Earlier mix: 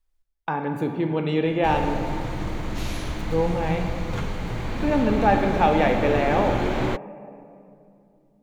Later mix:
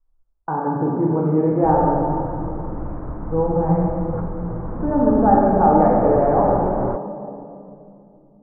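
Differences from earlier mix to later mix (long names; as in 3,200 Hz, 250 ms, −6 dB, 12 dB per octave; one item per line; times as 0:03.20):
speech: send +9.5 dB
master: add Butterworth low-pass 1,300 Hz 36 dB per octave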